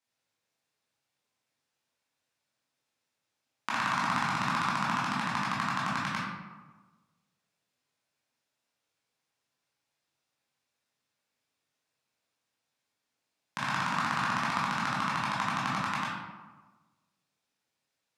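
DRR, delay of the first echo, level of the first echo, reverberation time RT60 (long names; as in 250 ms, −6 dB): −7.5 dB, no echo audible, no echo audible, 1.3 s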